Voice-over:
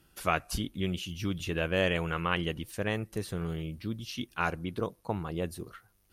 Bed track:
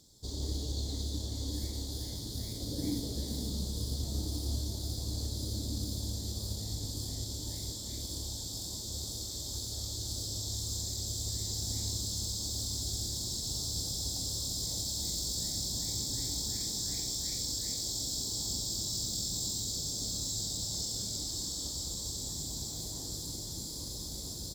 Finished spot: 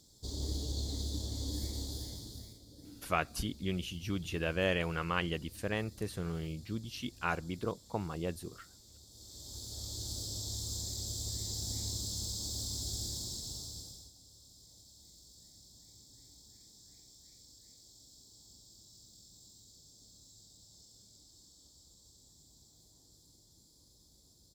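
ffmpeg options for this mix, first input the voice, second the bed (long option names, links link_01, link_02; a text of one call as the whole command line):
ffmpeg -i stem1.wav -i stem2.wav -filter_complex "[0:a]adelay=2850,volume=-3.5dB[link_01];[1:a]volume=14.5dB,afade=type=out:start_time=1.85:duration=0.77:silence=0.133352,afade=type=in:start_time=9.1:duration=0.91:silence=0.158489,afade=type=out:start_time=13.09:duration=1.03:silence=0.0944061[link_02];[link_01][link_02]amix=inputs=2:normalize=0" out.wav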